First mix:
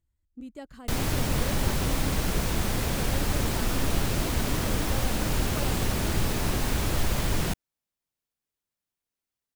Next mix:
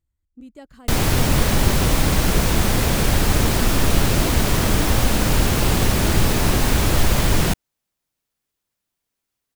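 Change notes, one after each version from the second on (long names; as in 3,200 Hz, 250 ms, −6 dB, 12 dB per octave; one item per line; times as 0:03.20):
background +9.0 dB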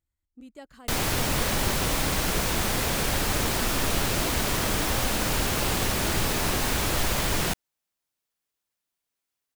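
background −3.5 dB
master: add low-shelf EQ 340 Hz −8.5 dB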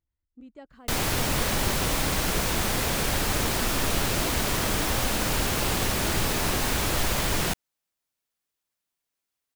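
speech: add head-to-tape spacing loss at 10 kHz 21 dB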